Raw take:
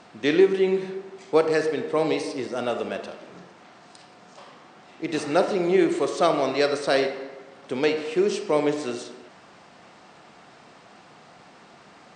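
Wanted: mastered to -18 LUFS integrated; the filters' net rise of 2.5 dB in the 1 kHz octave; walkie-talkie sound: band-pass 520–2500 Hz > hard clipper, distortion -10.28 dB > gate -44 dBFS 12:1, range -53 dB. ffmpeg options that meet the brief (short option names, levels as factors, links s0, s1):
-af "highpass=520,lowpass=2500,equalizer=f=1000:t=o:g=4.5,asoftclip=type=hard:threshold=0.1,agate=range=0.00224:threshold=0.00631:ratio=12,volume=3.35"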